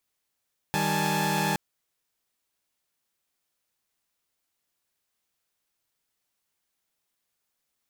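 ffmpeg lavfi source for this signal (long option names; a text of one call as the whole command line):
ffmpeg -f lavfi -i "aevalsrc='0.0447*((2*mod(155.56*t,1)-1)+(2*mod(196*t,1)-1)+(2*mod(830.61*t,1)-1)+(2*mod(880*t,1)-1))':duration=0.82:sample_rate=44100" out.wav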